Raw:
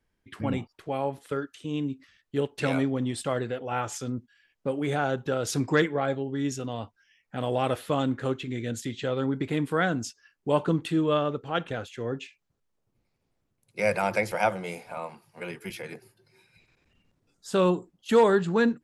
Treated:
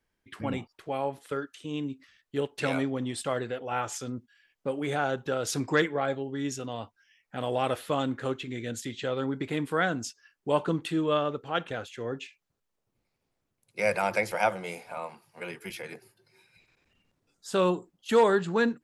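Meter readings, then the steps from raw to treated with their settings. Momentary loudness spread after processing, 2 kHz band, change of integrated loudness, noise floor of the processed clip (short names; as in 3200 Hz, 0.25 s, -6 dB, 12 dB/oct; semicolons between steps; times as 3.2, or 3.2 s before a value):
14 LU, 0.0 dB, -2.0 dB, -81 dBFS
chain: low shelf 310 Hz -6 dB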